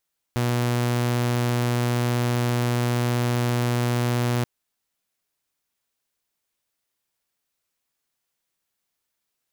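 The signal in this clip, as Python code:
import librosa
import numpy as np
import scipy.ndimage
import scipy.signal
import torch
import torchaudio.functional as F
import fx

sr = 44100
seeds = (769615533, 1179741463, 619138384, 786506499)

y = 10.0 ** (-18.0 / 20.0) * (2.0 * np.mod(121.0 * (np.arange(round(4.08 * sr)) / sr), 1.0) - 1.0)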